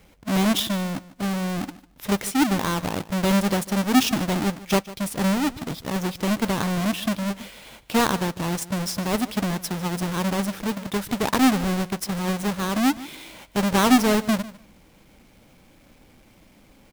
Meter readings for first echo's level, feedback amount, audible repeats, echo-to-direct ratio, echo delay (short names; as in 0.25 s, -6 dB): -18.0 dB, 16%, 2, -18.0 dB, 0.149 s